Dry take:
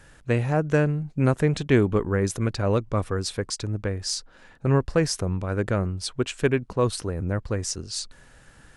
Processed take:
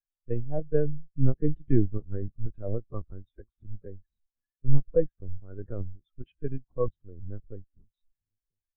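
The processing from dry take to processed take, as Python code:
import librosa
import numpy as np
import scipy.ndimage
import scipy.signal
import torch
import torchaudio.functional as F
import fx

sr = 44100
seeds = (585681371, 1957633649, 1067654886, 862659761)

y = fx.peak_eq(x, sr, hz=390.0, db=-8.5, octaves=0.22)
y = fx.quant_float(y, sr, bits=2)
y = fx.echo_feedback(y, sr, ms=990, feedback_pct=29, wet_db=-23)
y = fx.lpc_vocoder(y, sr, seeds[0], excitation='pitch_kept', order=8)
y = fx.spectral_expand(y, sr, expansion=2.5)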